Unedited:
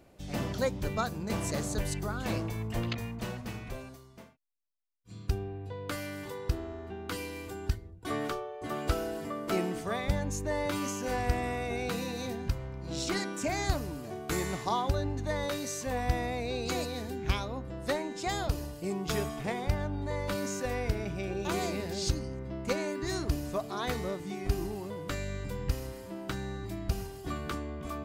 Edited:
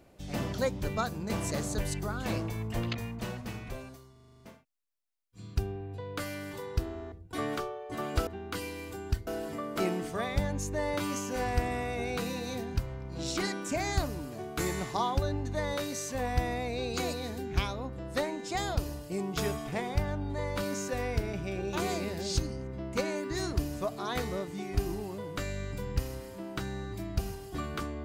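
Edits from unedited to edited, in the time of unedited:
4.12 stutter 0.04 s, 8 plays
6.84–7.84 move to 8.99

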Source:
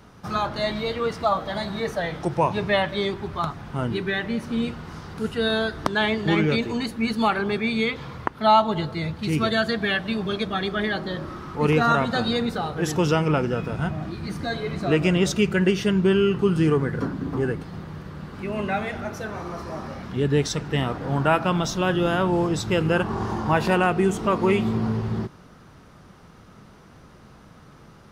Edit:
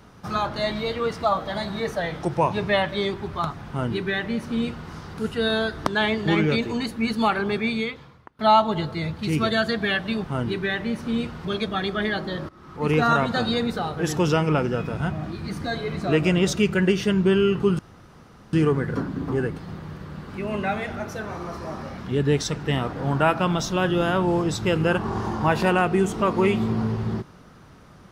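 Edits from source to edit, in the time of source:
3.68–4.89 copy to 10.24
7.69–8.39 fade out quadratic, to -23 dB
11.28–11.8 fade in, from -21.5 dB
16.58 insert room tone 0.74 s

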